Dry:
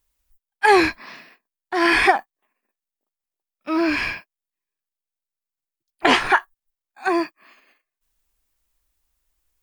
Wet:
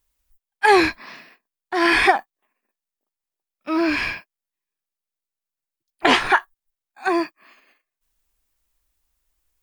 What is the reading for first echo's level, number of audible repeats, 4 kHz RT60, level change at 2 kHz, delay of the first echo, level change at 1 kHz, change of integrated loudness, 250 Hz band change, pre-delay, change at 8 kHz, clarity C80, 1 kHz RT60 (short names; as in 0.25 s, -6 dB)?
none, none, none, 0.0 dB, none, 0.0 dB, 0.0 dB, 0.0 dB, none, 0.0 dB, none, none